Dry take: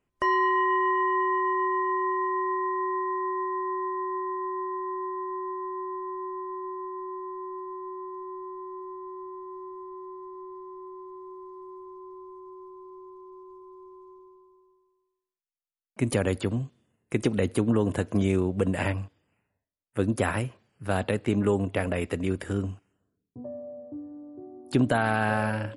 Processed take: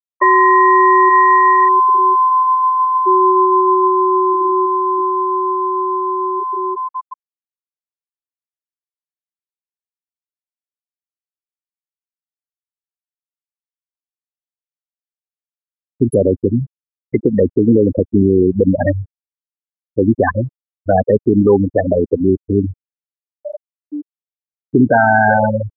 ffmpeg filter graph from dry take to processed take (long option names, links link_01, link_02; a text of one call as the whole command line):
ffmpeg -i in.wav -filter_complex "[0:a]asettb=1/sr,asplit=3[link_01][link_02][link_03];[link_01]atrim=end=1.094[link_04];[link_02]atrim=start=1.09:end=3.07,asetpts=PTS-STARTPTS,afade=type=in:duration=0.004:curve=qsin,afade=type=out:start_time=1.976:duration=0.004:curve=qsin,asuperstop=centerf=1500:order=8:qfactor=5.8,equalizer=frequency=390:width=0.63:gain=-6[link_05];[link_03]atrim=start=3.066[link_06];[link_04][link_05]acrossfade=duration=0.004:curve1=hsin:curve2=qsin[link_07];[link_07][link_06]acrossfade=duration=0.004:curve1=qsin:curve2=hsin,afftfilt=real='re*gte(hypot(re,im),0.158)':imag='im*gte(hypot(re,im),0.158)':win_size=1024:overlap=0.75,bass=frequency=250:gain=-9,treble=frequency=4000:gain=-1,alimiter=level_in=21.5dB:limit=-1dB:release=50:level=0:latency=1,volume=-2dB" out.wav